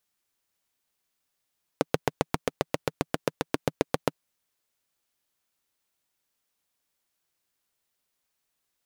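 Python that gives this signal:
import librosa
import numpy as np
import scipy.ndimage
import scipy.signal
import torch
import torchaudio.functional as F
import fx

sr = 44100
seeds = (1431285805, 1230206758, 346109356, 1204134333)

y = fx.engine_single(sr, seeds[0], length_s=2.4, rpm=900, resonances_hz=(160.0, 290.0, 440.0))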